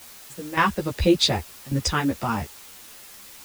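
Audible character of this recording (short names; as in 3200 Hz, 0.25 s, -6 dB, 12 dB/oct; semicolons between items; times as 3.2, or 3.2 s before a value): random-step tremolo, depth 95%; a quantiser's noise floor 8-bit, dither triangular; a shimmering, thickened sound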